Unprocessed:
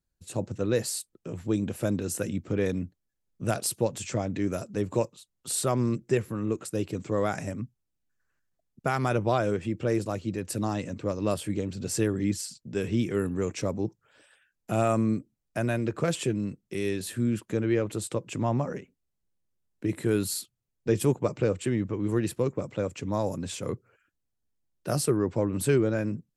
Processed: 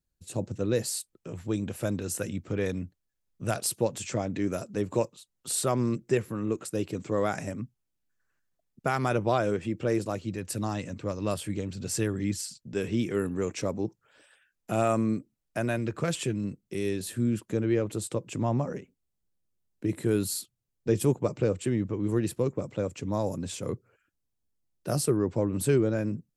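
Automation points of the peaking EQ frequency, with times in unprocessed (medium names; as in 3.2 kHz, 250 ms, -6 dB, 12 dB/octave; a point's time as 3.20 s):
peaking EQ -3.5 dB 2.2 oct
1.3 kHz
from 0.92 s 260 Hz
from 3.67 s 61 Hz
from 10.25 s 380 Hz
from 12.73 s 86 Hz
from 15.78 s 470 Hz
from 16.44 s 1.8 kHz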